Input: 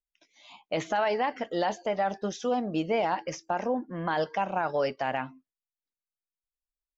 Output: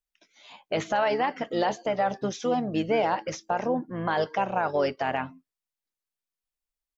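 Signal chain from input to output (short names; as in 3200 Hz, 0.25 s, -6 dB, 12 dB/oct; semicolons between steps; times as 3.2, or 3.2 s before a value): harmoniser -7 st -12 dB; gain +2 dB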